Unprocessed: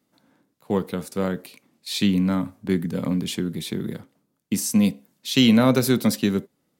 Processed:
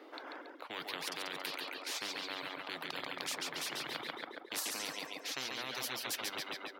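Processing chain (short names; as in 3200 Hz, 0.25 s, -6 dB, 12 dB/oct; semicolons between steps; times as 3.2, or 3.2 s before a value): air absorption 340 m; reverse; compressor 6:1, threshold -29 dBFS, peak gain reduction 15 dB; reverse; high shelf 9100 Hz +5 dB; on a send: feedback echo 0.139 s, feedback 45%, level -5 dB; on the sum: reverb removal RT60 0.67 s; elliptic high-pass 310 Hz, stop band 40 dB; spectral compressor 10:1; gain +5.5 dB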